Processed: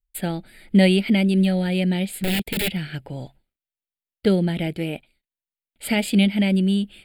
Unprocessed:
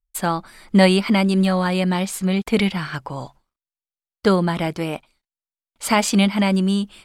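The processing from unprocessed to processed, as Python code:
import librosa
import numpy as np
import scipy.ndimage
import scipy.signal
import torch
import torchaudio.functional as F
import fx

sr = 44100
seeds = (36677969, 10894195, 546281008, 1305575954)

y = fx.overflow_wrap(x, sr, gain_db=15.5, at=(2.15, 2.75), fade=0.02)
y = fx.dynamic_eq(y, sr, hz=1300.0, q=1.2, threshold_db=-35.0, ratio=4.0, max_db=-5)
y = fx.fixed_phaser(y, sr, hz=2600.0, stages=4)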